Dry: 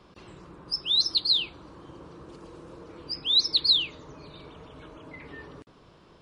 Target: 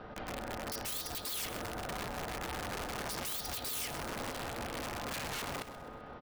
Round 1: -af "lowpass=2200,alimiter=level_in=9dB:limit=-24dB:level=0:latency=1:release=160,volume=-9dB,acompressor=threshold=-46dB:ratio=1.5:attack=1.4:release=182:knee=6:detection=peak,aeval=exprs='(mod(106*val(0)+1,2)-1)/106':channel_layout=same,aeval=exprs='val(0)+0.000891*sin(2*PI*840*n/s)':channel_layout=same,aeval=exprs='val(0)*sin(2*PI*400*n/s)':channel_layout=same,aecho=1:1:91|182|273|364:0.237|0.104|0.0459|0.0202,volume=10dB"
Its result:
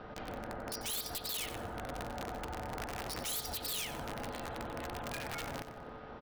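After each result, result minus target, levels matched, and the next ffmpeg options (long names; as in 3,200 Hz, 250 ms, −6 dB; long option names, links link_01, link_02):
echo 38 ms early; downward compressor: peak gain reduction +4 dB
-af "lowpass=2200,alimiter=level_in=9dB:limit=-24dB:level=0:latency=1:release=160,volume=-9dB,acompressor=threshold=-46dB:ratio=1.5:attack=1.4:release=182:knee=6:detection=peak,aeval=exprs='(mod(106*val(0)+1,2)-1)/106':channel_layout=same,aeval=exprs='val(0)+0.000891*sin(2*PI*840*n/s)':channel_layout=same,aeval=exprs='val(0)*sin(2*PI*400*n/s)':channel_layout=same,aecho=1:1:129|258|387|516:0.237|0.104|0.0459|0.0202,volume=10dB"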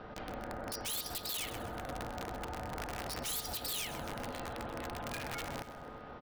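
downward compressor: peak gain reduction +4 dB
-af "lowpass=2200,alimiter=level_in=9dB:limit=-24dB:level=0:latency=1:release=160,volume=-9dB,aeval=exprs='(mod(106*val(0)+1,2)-1)/106':channel_layout=same,aeval=exprs='val(0)+0.000891*sin(2*PI*840*n/s)':channel_layout=same,aeval=exprs='val(0)*sin(2*PI*400*n/s)':channel_layout=same,aecho=1:1:129|258|387|516:0.237|0.104|0.0459|0.0202,volume=10dB"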